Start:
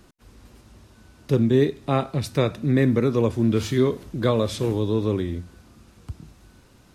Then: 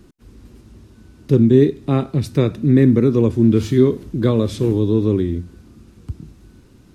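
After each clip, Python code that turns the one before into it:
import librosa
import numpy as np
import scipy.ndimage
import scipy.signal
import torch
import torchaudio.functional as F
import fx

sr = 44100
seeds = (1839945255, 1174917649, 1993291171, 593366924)

y = fx.low_shelf_res(x, sr, hz=470.0, db=7.0, q=1.5)
y = F.gain(torch.from_numpy(y), -1.0).numpy()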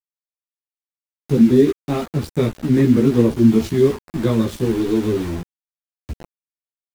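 y = np.where(np.abs(x) >= 10.0 ** (-25.5 / 20.0), x, 0.0)
y = fx.chorus_voices(y, sr, voices=6, hz=1.3, base_ms=15, depth_ms=3.0, mix_pct=50)
y = F.gain(torch.from_numpy(y), 1.5).numpy()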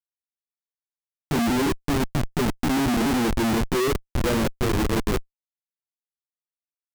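y = fx.vibrato(x, sr, rate_hz=2.3, depth_cents=44.0)
y = fx.filter_sweep_bandpass(y, sr, from_hz=270.0, to_hz=3400.0, start_s=3.13, end_s=6.83, q=1.5)
y = fx.schmitt(y, sr, flips_db=-27.0)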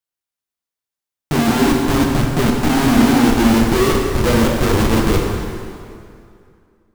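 y = fx.rev_plate(x, sr, seeds[0], rt60_s=2.4, hf_ratio=0.8, predelay_ms=0, drr_db=-0.5)
y = F.gain(torch.from_numpy(y), 5.0).numpy()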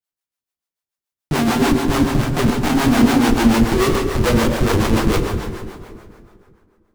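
y = fx.harmonic_tremolo(x, sr, hz=6.9, depth_pct=70, crossover_hz=420.0)
y = fx.doppler_dist(y, sr, depth_ms=0.18)
y = F.gain(torch.from_numpy(y), 2.0).numpy()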